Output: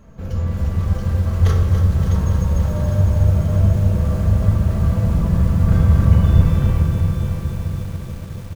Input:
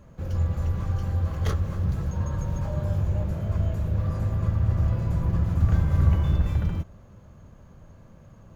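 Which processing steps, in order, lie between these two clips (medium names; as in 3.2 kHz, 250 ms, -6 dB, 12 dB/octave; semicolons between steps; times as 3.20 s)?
feedback delay 651 ms, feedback 39%, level -9.5 dB; simulated room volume 1400 m³, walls mixed, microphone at 1.6 m; bit-crushed delay 284 ms, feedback 80%, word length 7-bit, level -9 dB; trim +3 dB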